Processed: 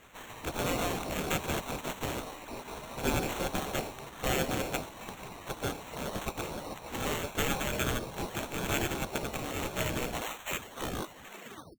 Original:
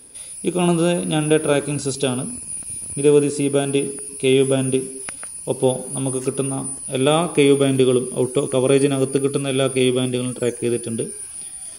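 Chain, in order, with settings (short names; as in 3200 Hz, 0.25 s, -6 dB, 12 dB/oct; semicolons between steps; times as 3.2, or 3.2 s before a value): tape stop at the end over 1.73 s; spectral gate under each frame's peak -25 dB weak; high shelf 5000 Hz +7.5 dB; sample-and-hold 9×; dynamic EQ 1800 Hz, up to -5 dB, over -48 dBFS, Q 1.5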